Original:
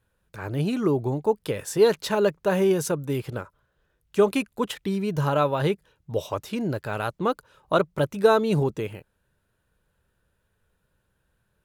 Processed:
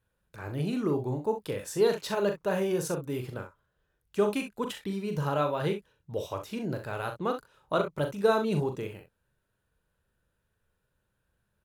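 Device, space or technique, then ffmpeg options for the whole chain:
slapback doubling: -filter_complex "[0:a]asplit=3[s0][s1][s2];[s1]adelay=40,volume=0.447[s3];[s2]adelay=64,volume=0.282[s4];[s0][s3][s4]amix=inputs=3:normalize=0,volume=0.473"

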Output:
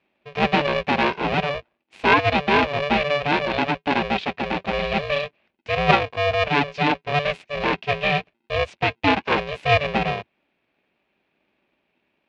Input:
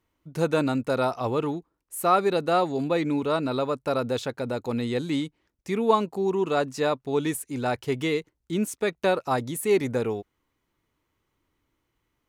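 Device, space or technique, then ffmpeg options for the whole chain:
ring modulator pedal into a guitar cabinet: -filter_complex "[0:a]asplit=3[s0][s1][s2];[s0]afade=t=out:st=3.18:d=0.02[s3];[s1]highpass=120,afade=t=in:st=3.18:d=0.02,afade=t=out:st=3.86:d=0.02[s4];[s2]afade=t=in:st=3.86:d=0.02[s5];[s3][s4][s5]amix=inputs=3:normalize=0,aeval=exprs='val(0)*sgn(sin(2*PI*290*n/s))':c=same,highpass=76,equalizer=f=83:t=q:w=4:g=-8,equalizer=f=130:t=q:w=4:g=-5,equalizer=f=1300:t=q:w=4:g=-5,equalizer=f=2500:t=q:w=4:g=9,lowpass=f=3900:w=0.5412,lowpass=f=3900:w=1.3066,volume=1.68"

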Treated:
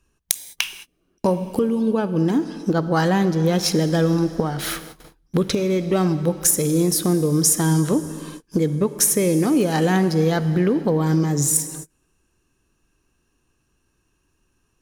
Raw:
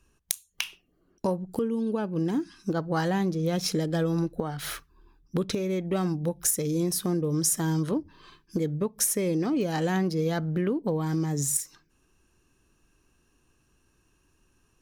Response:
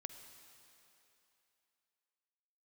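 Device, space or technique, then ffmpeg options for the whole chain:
keyed gated reverb: -filter_complex "[0:a]asplit=3[s0][s1][s2];[1:a]atrim=start_sample=2205[s3];[s1][s3]afir=irnorm=-1:irlink=0[s4];[s2]apad=whole_len=653292[s5];[s4][s5]sidechaingate=range=0.0158:threshold=0.002:ratio=16:detection=peak,volume=2.99[s6];[s0][s6]amix=inputs=2:normalize=0,volume=0.891"

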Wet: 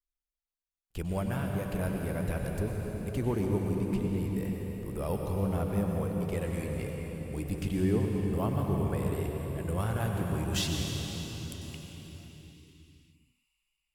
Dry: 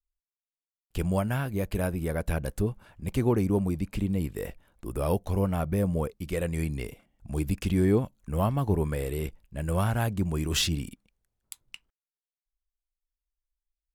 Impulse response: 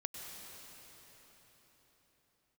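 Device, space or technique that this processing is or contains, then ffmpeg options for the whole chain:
cathedral: -filter_complex "[1:a]atrim=start_sample=2205[s0];[0:a][s0]afir=irnorm=-1:irlink=0,volume=0.708"

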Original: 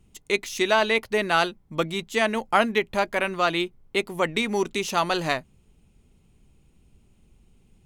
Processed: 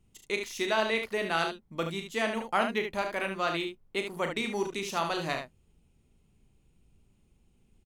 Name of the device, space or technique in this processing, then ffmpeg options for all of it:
slapback doubling: -filter_complex "[0:a]asplit=3[s0][s1][s2];[s1]adelay=36,volume=0.398[s3];[s2]adelay=73,volume=0.447[s4];[s0][s3][s4]amix=inputs=3:normalize=0,volume=0.398"

